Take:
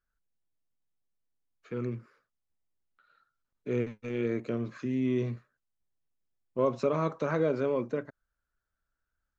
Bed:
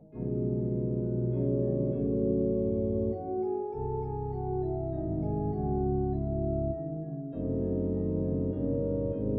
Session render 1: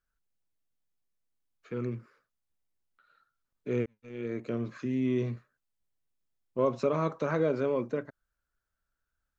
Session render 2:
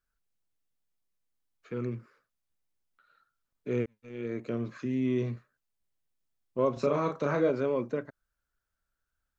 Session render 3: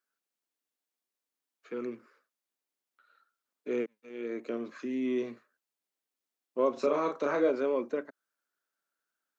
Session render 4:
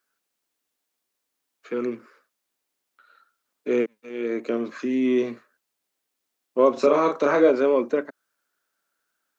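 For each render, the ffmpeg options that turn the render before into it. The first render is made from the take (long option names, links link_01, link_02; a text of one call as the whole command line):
ffmpeg -i in.wav -filter_complex "[0:a]asplit=2[link_01][link_02];[link_01]atrim=end=3.86,asetpts=PTS-STARTPTS,afade=type=out:start_time=3.856:duration=0.004:curve=hsin[link_03];[link_02]atrim=start=3.86,asetpts=PTS-STARTPTS,afade=type=in:duration=0.73[link_04];[link_03][link_04]concat=n=2:v=0:a=1" out.wav
ffmpeg -i in.wav -filter_complex "[0:a]asettb=1/sr,asplit=3[link_01][link_02][link_03];[link_01]atrim=end=6.734[link_04];[link_02]atrim=start=6.73:end=7.5,asetpts=PTS-STARTPTS,afade=type=in:duration=0.004:curve=qsin,afade=type=out:start_time=0.766:duration=0.004:curve=qsin,asplit=2[link_05][link_06];[link_06]adelay=35,volume=-4.5dB[link_07];[link_05][link_07]amix=inputs=2:normalize=0,atrim=end_sample=33957[link_08];[link_03]atrim=start=7.496[link_09];[link_04][link_08]acrossfade=duration=0.004:curve1=hsin:curve2=qsin[link_10];[link_10][link_09]acrossfade=duration=0.004:curve1=qsin:curve2=hsin" out.wav
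ffmpeg -i in.wav -af "highpass=frequency=250:width=0.5412,highpass=frequency=250:width=1.3066" out.wav
ffmpeg -i in.wav -af "volume=9.5dB" out.wav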